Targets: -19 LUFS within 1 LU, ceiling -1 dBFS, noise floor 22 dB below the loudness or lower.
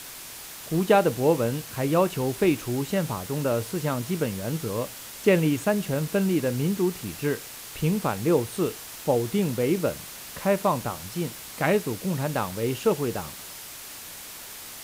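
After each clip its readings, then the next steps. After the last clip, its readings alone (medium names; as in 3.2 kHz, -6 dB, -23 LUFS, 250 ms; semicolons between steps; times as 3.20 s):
noise floor -41 dBFS; noise floor target -48 dBFS; loudness -26.0 LUFS; peak level -7.0 dBFS; loudness target -19.0 LUFS
-> noise print and reduce 7 dB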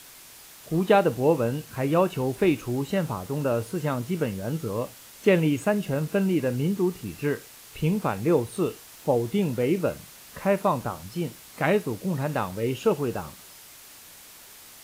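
noise floor -48 dBFS; loudness -26.0 LUFS; peak level -7.0 dBFS; loudness target -19.0 LUFS
-> trim +7 dB; peak limiter -1 dBFS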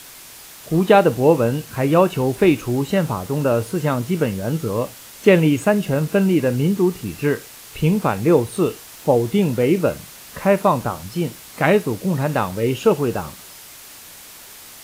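loudness -19.0 LUFS; peak level -1.0 dBFS; noise floor -41 dBFS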